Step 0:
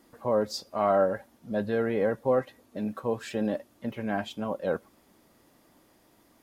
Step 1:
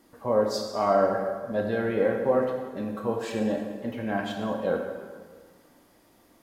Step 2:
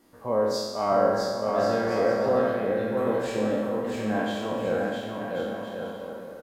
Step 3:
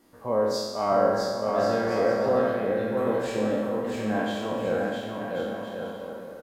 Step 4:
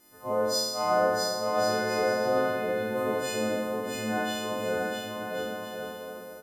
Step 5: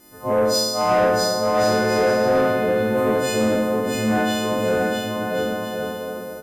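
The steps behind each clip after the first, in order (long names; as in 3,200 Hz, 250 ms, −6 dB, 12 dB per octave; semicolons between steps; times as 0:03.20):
convolution reverb RT60 1.6 s, pre-delay 13 ms, DRR 1.5 dB
peak hold with a decay on every bin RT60 1.09 s; bouncing-ball delay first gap 660 ms, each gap 0.65×, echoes 5; level −3 dB
no processing that can be heard
every partial snapped to a pitch grid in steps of 3 semitones; level −3.5 dB
low-shelf EQ 390 Hz +6.5 dB; soft clipping −19.5 dBFS, distortion −16 dB; level +8 dB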